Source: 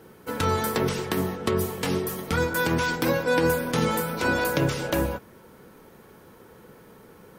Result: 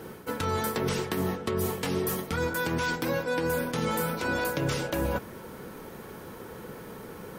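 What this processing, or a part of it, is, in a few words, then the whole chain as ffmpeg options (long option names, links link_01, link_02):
compression on the reversed sound: -af "areverse,acompressor=threshold=-34dB:ratio=6,areverse,volume=7.5dB"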